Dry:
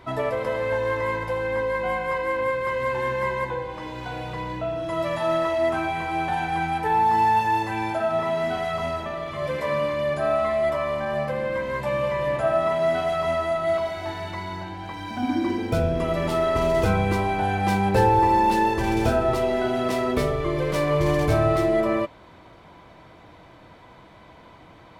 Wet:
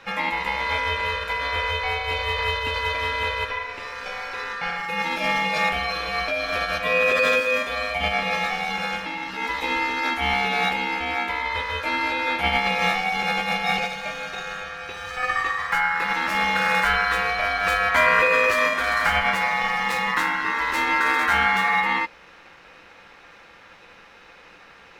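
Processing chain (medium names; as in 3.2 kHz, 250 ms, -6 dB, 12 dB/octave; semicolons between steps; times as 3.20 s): formant shift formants +2 st; ring modulator 1.5 kHz; trim +3 dB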